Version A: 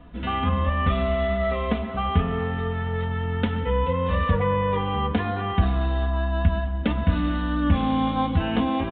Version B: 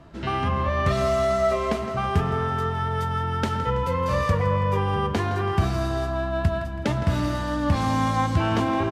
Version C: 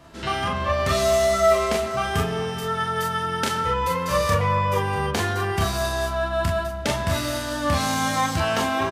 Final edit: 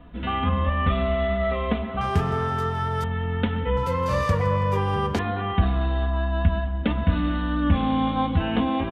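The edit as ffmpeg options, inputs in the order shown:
-filter_complex "[1:a]asplit=2[a][b];[0:a]asplit=3[c][d][e];[c]atrim=end=2.012[f];[a]atrim=start=2.008:end=3.042[g];[d]atrim=start=3.038:end=3.772[h];[b]atrim=start=3.768:end=5.192[i];[e]atrim=start=5.188[j];[f][g]acrossfade=d=0.004:c1=hsin:c2=hsin[k];[k][h]acrossfade=d=0.004:c1=hsin:c2=hsin[l];[l][i]acrossfade=d=0.004:c1=hsin:c2=hsin[m];[m][j]acrossfade=d=0.004:c1=hsin:c2=hsin"

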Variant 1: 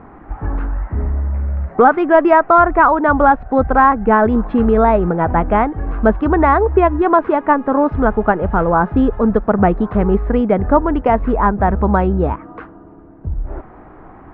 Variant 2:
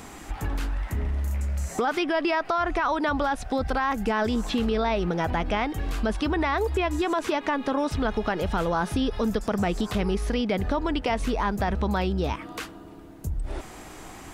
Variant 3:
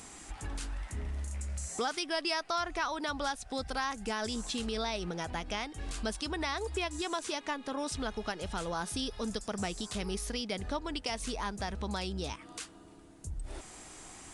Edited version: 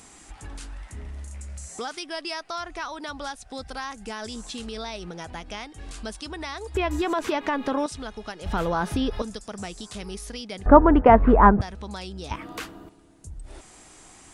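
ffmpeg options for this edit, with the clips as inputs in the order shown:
-filter_complex "[1:a]asplit=3[a][b][c];[2:a]asplit=5[d][e][f][g][h];[d]atrim=end=6.752[i];[a]atrim=start=6.748:end=7.862[j];[e]atrim=start=7.858:end=8.462[k];[b]atrim=start=8.458:end=9.222[l];[f]atrim=start=9.218:end=10.662[m];[0:a]atrim=start=10.658:end=11.612[n];[g]atrim=start=11.608:end=12.312[o];[c]atrim=start=12.308:end=12.892[p];[h]atrim=start=12.888[q];[i][j]acrossfade=d=0.004:c1=hsin:c2=hsin[r];[r][k]acrossfade=d=0.004:c1=hsin:c2=hsin[s];[s][l]acrossfade=d=0.004:c1=hsin:c2=hsin[t];[t][m]acrossfade=d=0.004:c1=hsin:c2=hsin[u];[u][n]acrossfade=d=0.004:c1=hsin:c2=hsin[v];[v][o]acrossfade=d=0.004:c1=hsin:c2=hsin[w];[w][p]acrossfade=d=0.004:c1=hsin:c2=hsin[x];[x][q]acrossfade=d=0.004:c1=hsin:c2=hsin"

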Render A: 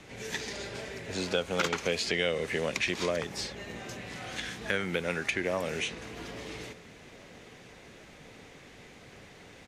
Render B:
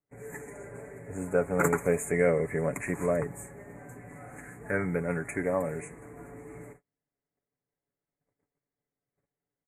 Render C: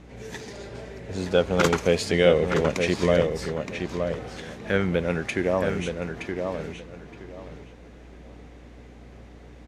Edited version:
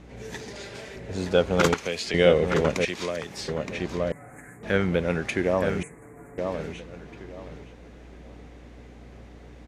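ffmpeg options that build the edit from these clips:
-filter_complex "[0:a]asplit=3[a][b][c];[1:a]asplit=2[d][e];[2:a]asplit=6[f][g][h][i][j][k];[f]atrim=end=0.562[l];[a]atrim=start=0.558:end=0.962[m];[g]atrim=start=0.958:end=1.742[n];[b]atrim=start=1.738:end=2.142[o];[h]atrim=start=2.138:end=2.852[p];[c]atrim=start=2.848:end=3.482[q];[i]atrim=start=3.478:end=4.122[r];[d]atrim=start=4.118:end=4.632[s];[j]atrim=start=4.628:end=5.832[t];[e]atrim=start=5.828:end=6.382[u];[k]atrim=start=6.378[v];[l][m]acrossfade=d=0.004:c1=hsin:c2=hsin[w];[w][n]acrossfade=d=0.004:c1=hsin:c2=hsin[x];[x][o]acrossfade=d=0.004:c1=hsin:c2=hsin[y];[y][p]acrossfade=d=0.004:c1=hsin:c2=hsin[z];[z][q]acrossfade=d=0.004:c1=hsin:c2=hsin[aa];[aa][r]acrossfade=d=0.004:c1=hsin:c2=hsin[ab];[ab][s]acrossfade=d=0.004:c1=hsin:c2=hsin[ac];[ac][t]acrossfade=d=0.004:c1=hsin:c2=hsin[ad];[ad][u]acrossfade=d=0.004:c1=hsin:c2=hsin[ae];[ae][v]acrossfade=d=0.004:c1=hsin:c2=hsin"

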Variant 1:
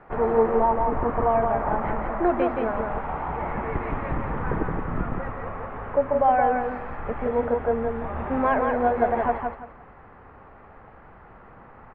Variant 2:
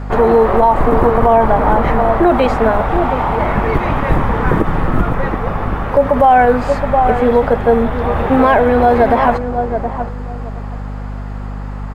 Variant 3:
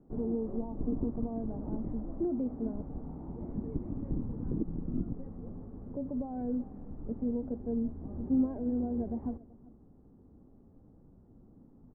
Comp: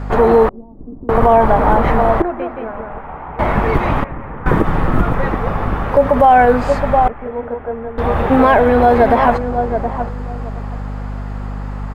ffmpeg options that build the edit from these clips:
-filter_complex "[0:a]asplit=3[a][b][c];[1:a]asplit=5[d][e][f][g][h];[d]atrim=end=0.492[i];[2:a]atrim=start=0.488:end=1.092[j];[e]atrim=start=1.088:end=2.222[k];[a]atrim=start=2.218:end=3.392[l];[f]atrim=start=3.388:end=4.042[m];[b]atrim=start=4.038:end=4.462[n];[g]atrim=start=4.458:end=7.082[o];[c]atrim=start=7.078:end=7.982[p];[h]atrim=start=7.978[q];[i][j]acrossfade=d=0.004:c1=hsin:c2=hsin[r];[r][k]acrossfade=d=0.004:c1=hsin:c2=hsin[s];[s][l]acrossfade=d=0.004:c1=hsin:c2=hsin[t];[t][m]acrossfade=d=0.004:c1=hsin:c2=hsin[u];[u][n]acrossfade=d=0.004:c1=hsin:c2=hsin[v];[v][o]acrossfade=d=0.004:c1=hsin:c2=hsin[w];[w][p]acrossfade=d=0.004:c1=hsin:c2=hsin[x];[x][q]acrossfade=d=0.004:c1=hsin:c2=hsin"

